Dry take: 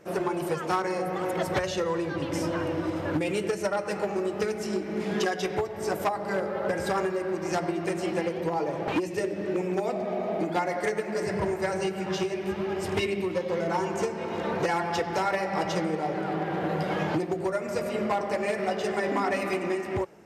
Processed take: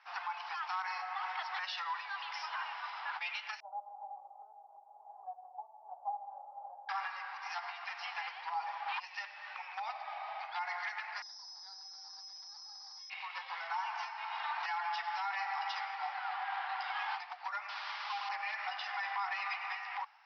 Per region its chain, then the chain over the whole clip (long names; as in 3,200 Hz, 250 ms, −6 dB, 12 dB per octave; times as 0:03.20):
0:03.60–0:06.89: Butterworth low-pass 770 Hz 48 dB per octave + hum removal 87.78 Hz, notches 32
0:11.22–0:13.10: Bessel low-pass filter 990 Hz, order 4 + bad sample-rate conversion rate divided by 8×, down filtered, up zero stuff
0:17.69–0:18.29: flat-topped band-pass 1,600 Hz, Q 0.68 + comparator with hysteresis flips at −40 dBFS
whole clip: Chebyshev high-pass filter 790 Hz, order 6; brickwall limiter −27.5 dBFS; Butterworth low-pass 5,400 Hz 96 dB per octave; level −1 dB